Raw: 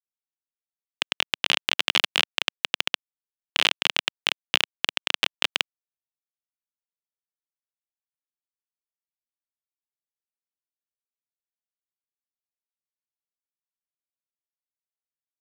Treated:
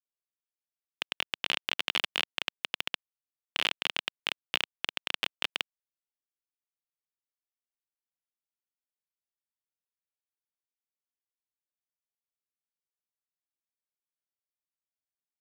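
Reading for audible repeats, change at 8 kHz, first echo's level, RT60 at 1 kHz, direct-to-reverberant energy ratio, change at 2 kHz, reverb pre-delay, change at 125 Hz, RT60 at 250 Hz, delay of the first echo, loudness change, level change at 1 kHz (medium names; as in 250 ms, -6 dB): no echo, -10.5 dB, no echo, no reverb, no reverb, -7.5 dB, no reverb, -7.5 dB, no reverb, no echo, -8.0 dB, -7.5 dB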